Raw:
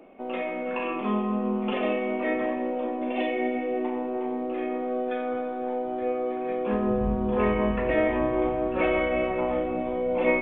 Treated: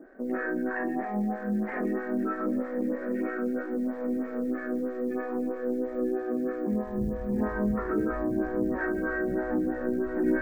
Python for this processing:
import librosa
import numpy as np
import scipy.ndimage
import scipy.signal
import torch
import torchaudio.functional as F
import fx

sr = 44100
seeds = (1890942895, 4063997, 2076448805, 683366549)

p1 = fx.peak_eq(x, sr, hz=2300.0, db=6.0, octaves=0.69)
p2 = fx.over_compress(p1, sr, threshold_db=-30.0, ratio=-1.0)
p3 = p1 + (p2 * 10.0 ** (-0.5 / 20.0))
p4 = fx.formant_shift(p3, sr, semitones=-6)
p5 = fx.air_absorb(p4, sr, metres=400.0)
p6 = fx.quant_companded(p5, sr, bits=8)
p7 = p6 + fx.echo_diffused(p6, sr, ms=1049, feedback_pct=49, wet_db=-10.5, dry=0)
p8 = fx.stagger_phaser(p7, sr, hz=3.1)
y = p8 * 10.0 ** (-3.5 / 20.0)